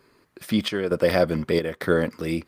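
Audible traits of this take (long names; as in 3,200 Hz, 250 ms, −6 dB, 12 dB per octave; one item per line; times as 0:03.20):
chopped level 1.1 Hz, depth 60%, duty 75%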